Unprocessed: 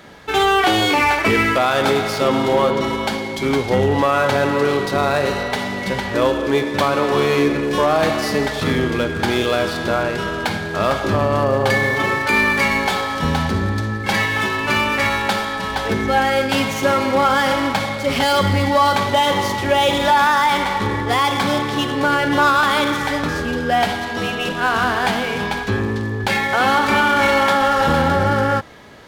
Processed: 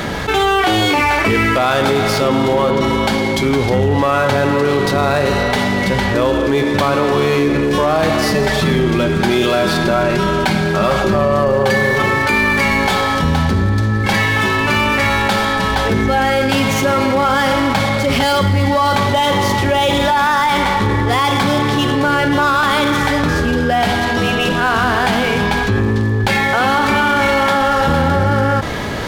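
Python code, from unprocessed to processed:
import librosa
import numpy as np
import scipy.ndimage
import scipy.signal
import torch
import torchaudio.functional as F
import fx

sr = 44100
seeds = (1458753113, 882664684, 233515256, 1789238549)

y = fx.comb(x, sr, ms=5.3, depth=0.65, at=(8.34, 12.02))
y = fx.low_shelf(y, sr, hz=160.0, db=7.0)
y = fx.env_flatten(y, sr, amount_pct=70)
y = y * librosa.db_to_amplitude(-1.5)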